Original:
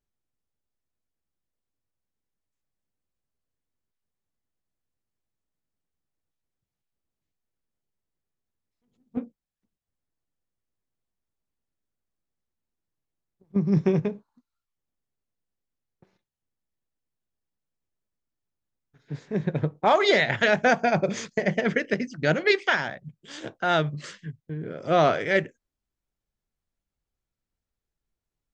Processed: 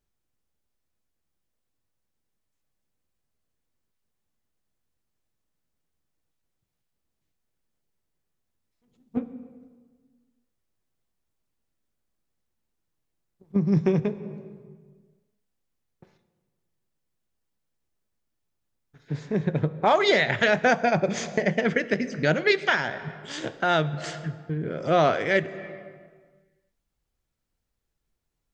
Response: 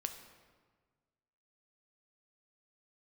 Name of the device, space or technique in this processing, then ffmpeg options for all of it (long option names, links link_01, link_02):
compressed reverb return: -filter_complex "[0:a]asplit=2[link_01][link_02];[1:a]atrim=start_sample=2205[link_03];[link_02][link_03]afir=irnorm=-1:irlink=0,acompressor=threshold=-32dB:ratio=6,volume=4.5dB[link_04];[link_01][link_04]amix=inputs=2:normalize=0,volume=-2.5dB"